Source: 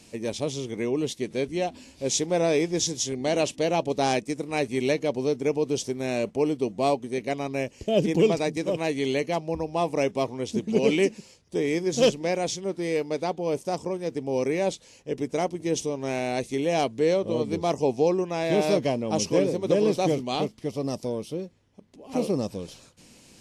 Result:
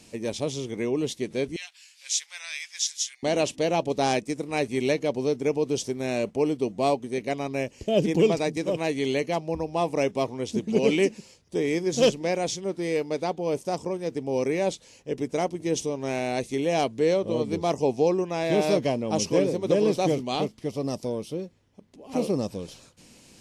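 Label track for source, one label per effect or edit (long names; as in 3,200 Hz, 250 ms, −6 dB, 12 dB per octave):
1.560000	3.230000	inverse Chebyshev high-pass filter stop band from 270 Hz, stop band 80 dB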